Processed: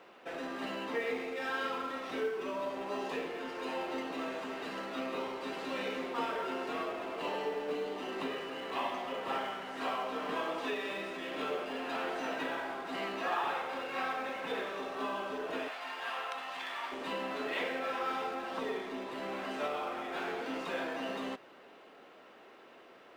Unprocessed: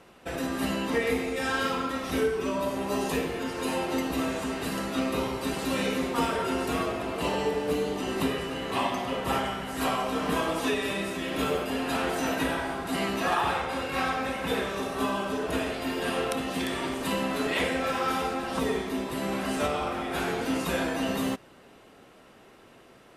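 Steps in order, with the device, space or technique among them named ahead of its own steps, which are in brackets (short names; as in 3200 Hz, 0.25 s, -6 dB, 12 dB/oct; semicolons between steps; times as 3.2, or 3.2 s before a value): phone line with mismatched companding (BPF 340–3600 Hz; G.711 law mismatch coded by mu); 15.68–16.92 resonant low shelf 590 Hz -13.5 dB, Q 1.5; gain -7.5 dB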